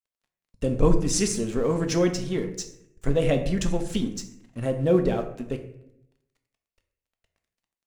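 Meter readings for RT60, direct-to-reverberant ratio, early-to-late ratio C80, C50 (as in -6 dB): 0.75 s, 5.5 dB, 12.5 dB, 10.0 dB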